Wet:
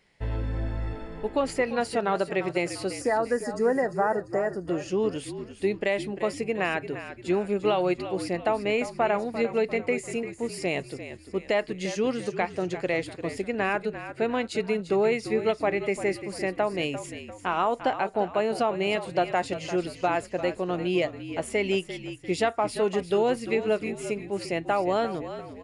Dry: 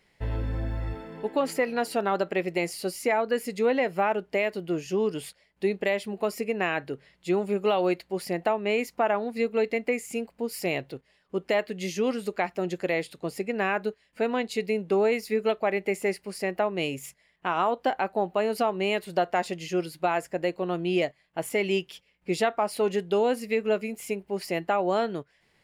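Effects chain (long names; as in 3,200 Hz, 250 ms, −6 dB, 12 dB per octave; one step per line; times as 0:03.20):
gain on a spectral selection 0:03.01–0:04.68, 2,000–4,600 Hz −24 dB
downsampling to 22,050 Hz
echo with shifted repeats 346 ms, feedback 45%, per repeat −50 Hz, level −11.5 dB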